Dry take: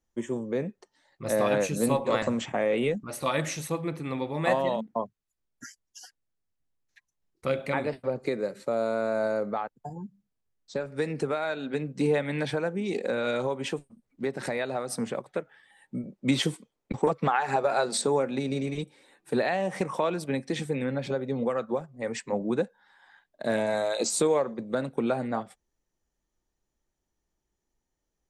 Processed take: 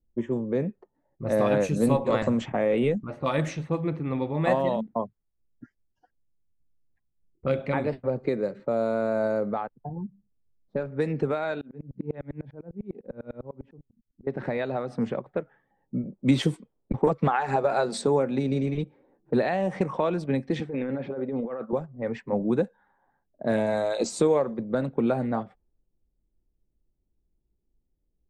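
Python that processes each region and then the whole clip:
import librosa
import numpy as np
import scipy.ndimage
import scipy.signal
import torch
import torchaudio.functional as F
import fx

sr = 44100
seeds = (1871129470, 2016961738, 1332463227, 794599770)

y = fx.chain(x, sr, fx.peak_eq(hz=730.0, db=-6.5, octaves=2.9),
    fx.tremolo_decay(direction='swelling', hz=10.0, depth_db=32), at=(11.61, 14.27))
y = fx.chain(y, sr, fx.highpass(hz=240.0, slope=12),
    fx.air_absorb(metres=64.0),
    fx.over_compress(threshold_db=-33.0, ratio=-1.0), at=(20.6, 21.73))
y = fx.env_lowpass(y, sr, base_hz=440.0, full_db=-23.5)
y = fx.tilt_eq(y, sr, slope=-2.0)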